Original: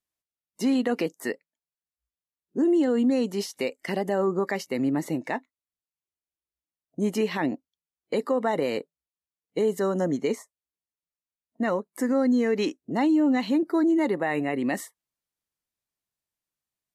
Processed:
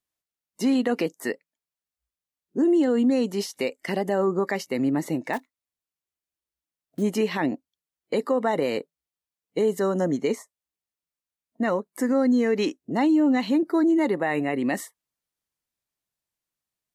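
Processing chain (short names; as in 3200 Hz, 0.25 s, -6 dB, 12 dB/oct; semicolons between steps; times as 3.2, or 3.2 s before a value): 5.33–7.04 block floating point 5-bit; gain +1.5 dB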